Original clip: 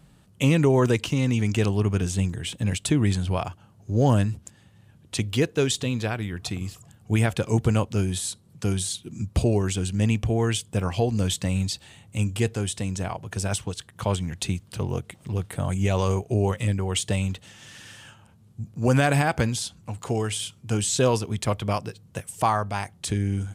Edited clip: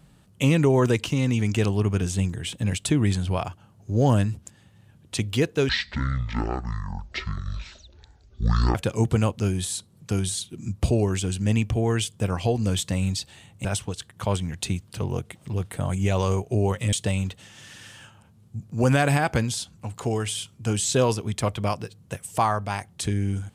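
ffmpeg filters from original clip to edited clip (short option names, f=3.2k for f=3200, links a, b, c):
-filter_complex "[0:a]asplit=5[a][b][c][d][e];[a]atrim=end=5.694[f];[b]atrim=start=5.69:end=7.28,asetpts=PTS-STARTPTS,asetrate=22932,aresample=44100,atrim=end_sample=134844,asetpts=PTS-STARTPTS[g];[c]atrim=start=7.276:end=12.182[h];[d]atrim=start=13.438:end=16.722[i];[e]atrim=start=16.968[j];[f][g]acrossfade=d=0.004:c1=hsin:c2=hsin[k];[k][h]acrossfade=d=0.004:c1=hsin:c2=hsin[l];[l][i]acrossfade=d=0.004:c1=hsin:c2=hsin[m];[m][j]acrossfade=d=0.004:c1=hsin:c2=hsin"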